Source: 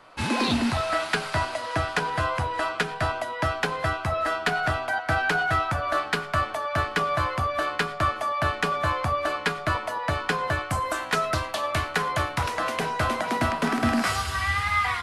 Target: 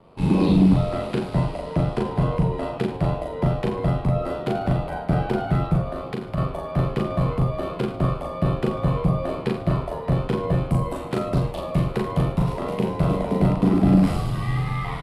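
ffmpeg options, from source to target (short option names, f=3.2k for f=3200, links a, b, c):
-filter_complex "[0:a]aeval=exprs='val(0)*sin(2*PI*44*n/s)':c=same,equalizer=f=160:t=o:w=0.67:g=10,equalizer=f=400:t=o:w=0.67:g=6,equalizer=f=1.6k:t=o:w=0.67:g=-11,equalizer=f=6.3k:t=o:w=0.67:g=-9,asplit=2[a][b];[b]aecho=0:1:37.9|84.55:0.794|0.316[c];[a][c]amix=inputs=2:normalize=0,asettb=1/sr,asplit=3[d][e][f];[d]atrim=end=5.814[g];[e]atrim=start=5.81:end=6.38,asetpts=PTS-STARTPTS,afade=t=in:d=0.004:c=qsin,afade=t=out:st=0.566:d=0.004:c=qsin,acompressor=threshold=-28dB:ratio=6[h];[f]atrim=start=6.376[i];[g][h]acrossfade=d=0.004:c1=hsin:c2=qsin[j];[j][i]acrossfade=d=0.004:c1=qsin:c2=hsin,tiltshelf=f=710:g=6,asplit=2[k][l];[l]asplit=7[m][n][o][p][q][r][s];[m]adelay=107,afreqshift=-100,volume=-15.5dB[t];[n]adelay=214,afreqshift=-200,volume=-19.4dB[u];[o]adelay=321,afreqshift=-300,volume=-23.3dB[v];[p]adelay=428,afreqshift=-400,volume=-27.1dB[w];[q]adelay=535,afreqshift=-500,volume=-31dB[x];[r]adelay=642,afreqshift=-600,volume=-34.9dB[y];[s]adelay=749,afreqshift=-700,volume=-38.8dB[z];[t][u][v][w][x][y][z]amix=inputs=7:normalize=0[aa];[k][aa]amix=inputs=2:normalize=0"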